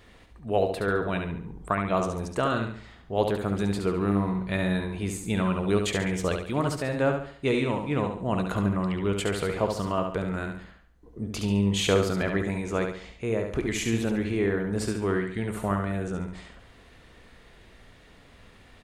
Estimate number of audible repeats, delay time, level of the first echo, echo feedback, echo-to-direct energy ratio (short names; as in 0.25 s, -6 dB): 4, 70 ms, -5.5 dB, 39%, -5.0 dB